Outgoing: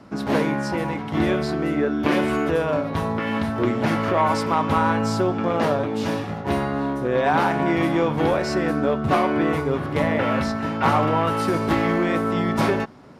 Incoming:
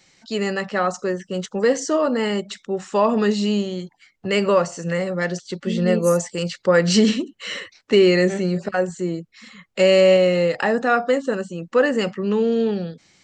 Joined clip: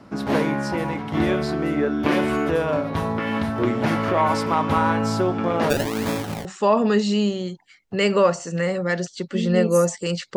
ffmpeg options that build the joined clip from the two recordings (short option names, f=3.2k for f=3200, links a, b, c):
-filter_complex "[0:a]asplit=3[a][b][c];[a]afade=t=out:st=5.69:d=0.02[d];[b]acrusher=samples=29:mix=1:aa=0.000001:lfo=1:lforange=29:lforate=1.1,afade=t=in:st=5.69:d=0.02,afade=t=out:st=6.45:d=0.02[e];[c]afade=t=in:st=6.45:d=0.02[f];[d][e][f]amix=inputs=3:normalize=0,apad=whole_dur=10.36,atrim=end=10.36,atrim=end=6.452[g];[1:a]atrim=start=2.768:end=6.68[h];[g][h]acrossfade=d=0.004:c1=hsin:c2=hsin"